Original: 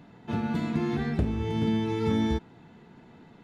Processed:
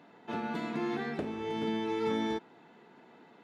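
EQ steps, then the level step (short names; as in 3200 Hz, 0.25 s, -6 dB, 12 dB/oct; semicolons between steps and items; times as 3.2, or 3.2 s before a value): HPF 350 Hz 12 dB/oct; high shelf 4500 Hz -6.5 dB; 0.0 dB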